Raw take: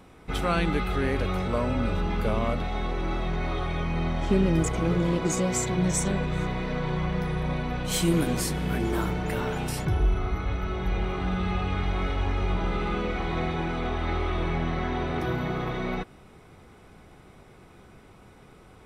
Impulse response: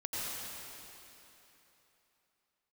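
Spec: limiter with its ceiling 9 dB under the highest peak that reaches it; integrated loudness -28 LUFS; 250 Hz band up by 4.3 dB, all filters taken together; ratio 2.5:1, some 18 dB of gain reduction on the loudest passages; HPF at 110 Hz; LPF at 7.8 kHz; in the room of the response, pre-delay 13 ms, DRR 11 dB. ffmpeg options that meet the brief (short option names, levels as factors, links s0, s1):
-filter_complex "[0:a]highpass=110,lowpass=7800,equalizer=f=250:t=o:g=7,acompressor=threshold=0.00631:ratio=2.5,alimiter=level_in=3.35:limit=0.0631:level=0:latency=1,volume=0.299,asplit=2[s0][s1];[1:a]atrim=start_sample=2205,adelay=13[s2];[s1][s2]afir=irnorm=-1:irlink=0,volume=0.168[s3];[s0][s3]amix=inputs=2:normalize=0,volume=5.96"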